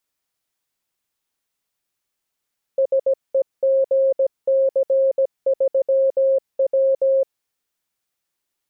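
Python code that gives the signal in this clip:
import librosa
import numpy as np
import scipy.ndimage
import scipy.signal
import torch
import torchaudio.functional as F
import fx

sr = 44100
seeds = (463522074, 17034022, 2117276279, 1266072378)

y = fx.morse(sr, text='SEGC3W', wpm=17, hz=537.0, level_db=-13.5)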